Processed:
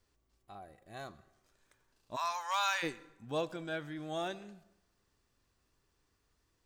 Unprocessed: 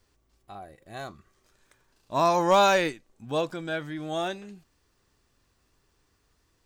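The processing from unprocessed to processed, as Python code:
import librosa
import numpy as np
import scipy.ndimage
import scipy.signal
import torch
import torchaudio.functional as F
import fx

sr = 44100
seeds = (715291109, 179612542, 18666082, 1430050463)

y = fx.highpass(x, sr, hz=1000.0, slope=24, at=(2.15, 2.82), fade=0.02)
y = fx.rev_plate(y, sr, seeds[0], rt60_s=0.91, hf_ratio=0.7, predelay_ms=80, drr_db=19.5)
y = y * librosa.db_to_amplitude(-7.5)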